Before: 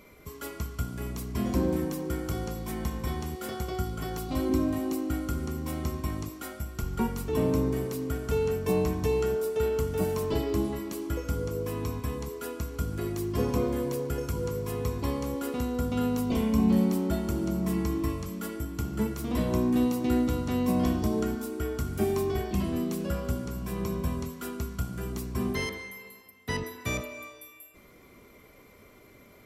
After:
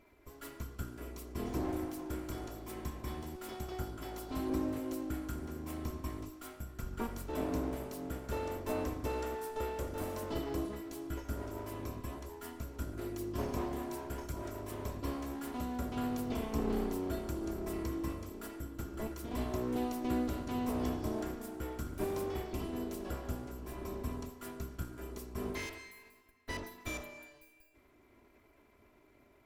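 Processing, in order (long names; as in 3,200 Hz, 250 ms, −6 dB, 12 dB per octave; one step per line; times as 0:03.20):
lower of the sound and its delayed copy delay 3 ms
one half of a high-frequency compander decoder only
level −7.5 dB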